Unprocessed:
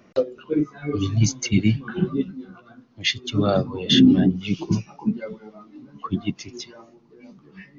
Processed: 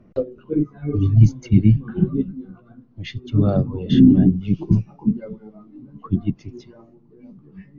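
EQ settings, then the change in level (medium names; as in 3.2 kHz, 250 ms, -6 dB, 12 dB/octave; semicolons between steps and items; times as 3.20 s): tilt EQ -4.5 dB/octave; -6.5 dB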